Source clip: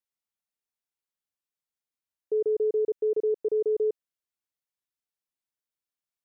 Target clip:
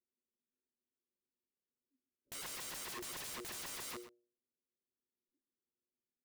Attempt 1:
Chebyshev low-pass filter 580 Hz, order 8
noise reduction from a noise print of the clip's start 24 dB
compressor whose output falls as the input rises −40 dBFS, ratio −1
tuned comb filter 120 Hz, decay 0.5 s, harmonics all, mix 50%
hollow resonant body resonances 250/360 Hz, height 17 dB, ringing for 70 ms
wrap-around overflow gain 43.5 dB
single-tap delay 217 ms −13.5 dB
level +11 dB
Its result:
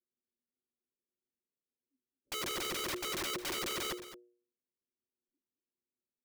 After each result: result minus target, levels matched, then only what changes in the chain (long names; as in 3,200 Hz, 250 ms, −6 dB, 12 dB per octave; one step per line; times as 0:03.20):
wrap-around overflow: distortion −28 dB; echo 93 ms late
change: wrap-around overflow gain 52 dB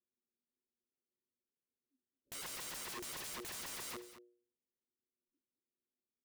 echo 93 ms late
change: single-tap delay 124 ms −13.5 dB